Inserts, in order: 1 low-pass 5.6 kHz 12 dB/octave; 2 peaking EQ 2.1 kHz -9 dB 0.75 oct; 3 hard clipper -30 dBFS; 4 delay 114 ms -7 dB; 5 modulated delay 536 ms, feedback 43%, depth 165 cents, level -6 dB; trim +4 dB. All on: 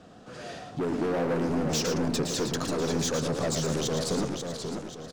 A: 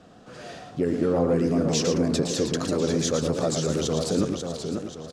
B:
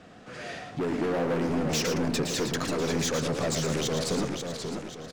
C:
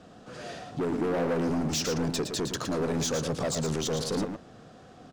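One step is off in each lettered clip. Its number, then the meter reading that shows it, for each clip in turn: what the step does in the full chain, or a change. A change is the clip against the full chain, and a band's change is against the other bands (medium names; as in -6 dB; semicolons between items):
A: 3, distortion -7 dB; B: 2, 2 kHz band +3.5 dB; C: 5, momentary loudness spread change +1 LU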